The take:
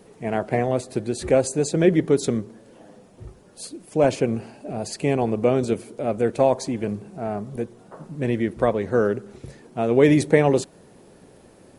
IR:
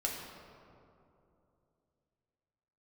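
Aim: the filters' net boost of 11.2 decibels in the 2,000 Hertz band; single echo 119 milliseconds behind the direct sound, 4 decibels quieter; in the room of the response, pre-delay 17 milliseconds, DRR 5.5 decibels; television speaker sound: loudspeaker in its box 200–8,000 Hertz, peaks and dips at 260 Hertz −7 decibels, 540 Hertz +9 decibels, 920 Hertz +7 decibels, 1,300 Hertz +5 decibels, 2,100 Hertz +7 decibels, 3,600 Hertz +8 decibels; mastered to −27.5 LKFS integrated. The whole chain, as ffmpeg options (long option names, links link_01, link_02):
-filter_complex "[0:a]equalizer=frequency=2000:width_type=o:gain=7,aecho=1:1:119:0.631,asplit=2[link_01][link_02];[1:a]atrim=start_sample=2205,adelay=17[link_03];[link_02][link_03]afir=irnorm=-1:irlink=0,volume=-9dB[link_04];[link_01][link_04]amix=inputs=2:normalize=0,highpass=frequency=200:width=0.5412,highpass=frequency=200:width=1.3066,equalizer=frequency=260:width_type=q:width=4:gain=-7,equalizer=frequency=540:width_type=q:width=4:gain=9,equalizer=frequency=920:width_type=q:width=4:gain=7,equalizer=frequency=1300:width_type=q:width=4:gain=5,equalizer=frequency=2100:width_type=q:width=4:gain=7,equalizer=frequency=3600:width_type=q:width=4:gain=8,lowpass=frequency=8000:width=0.5412,lowpass=frequency=8000:width=1.3066,volume=-12.5dB"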